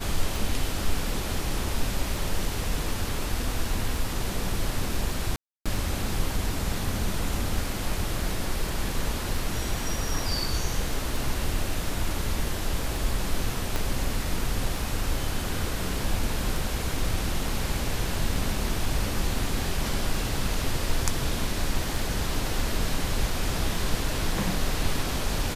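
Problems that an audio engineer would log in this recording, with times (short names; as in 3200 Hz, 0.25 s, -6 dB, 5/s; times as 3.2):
tick 33 1/3 rpm
5.36–5.66 gap 0.296 s
13.76 pop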